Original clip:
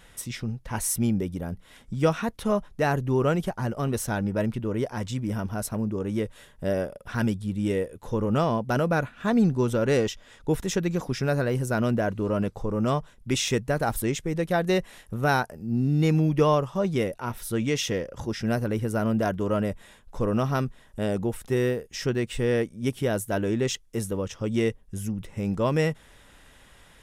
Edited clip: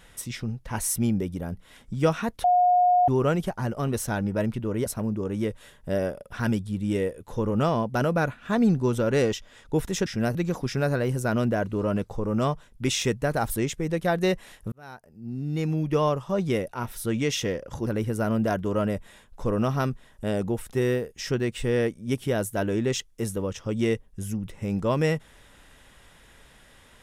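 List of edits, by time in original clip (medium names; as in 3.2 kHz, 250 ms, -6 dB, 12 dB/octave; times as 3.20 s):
2.44–3.08 s: bleep 719 Hz -16 dBFS
4.86–5.61 s: delete
15.18–16.88 s: fade in
18.33–18.62 s: move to 10.81 s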